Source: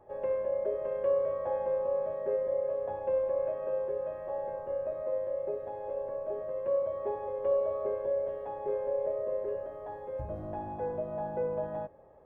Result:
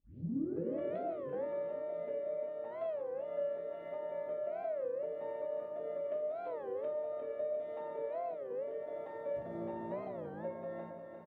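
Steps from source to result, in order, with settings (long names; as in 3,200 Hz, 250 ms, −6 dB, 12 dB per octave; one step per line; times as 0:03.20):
turntable start at the beginning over 0.87 s
downward compressor, threshold −36 dBFS, peak gain reduction 11.5 dB
high-pass filter 180 Hz 12 dB per octave
parametric band 820 Hz −10.5 dB 1.1 octaves
on a send: repeating echo 382 ms, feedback 54%, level −7.5 dB
on the sum: rectangular room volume 780 cubic metres, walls furnished, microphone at 2.1 metres
wrong playback speed 44.1 kHz file played as 48 kHz
bass and treble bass −3 dB, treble −4 dB
wow of a warped record 33 1/3 rpm, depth 250 cents
level +1 dB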